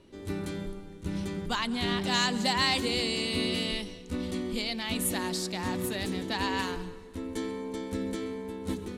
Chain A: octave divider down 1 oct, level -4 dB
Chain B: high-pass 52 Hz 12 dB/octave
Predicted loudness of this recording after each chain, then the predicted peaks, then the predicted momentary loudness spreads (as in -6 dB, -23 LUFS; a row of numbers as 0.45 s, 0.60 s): -30.5 LUFS, -31.0 LUFS; -13.0 dBFS, -13.0 dBFS; 11 LU, 11 LU